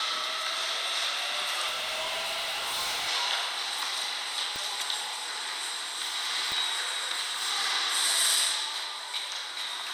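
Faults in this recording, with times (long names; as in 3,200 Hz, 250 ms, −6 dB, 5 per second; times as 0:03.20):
0:01.67–0:03.09: clipping −28 dBFS
0:04.56: click
0:06.52: click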